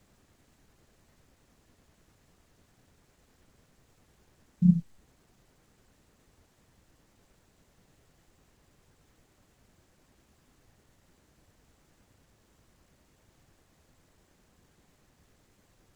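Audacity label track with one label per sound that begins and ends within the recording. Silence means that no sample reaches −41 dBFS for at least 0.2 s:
4.620000	4.800000	sound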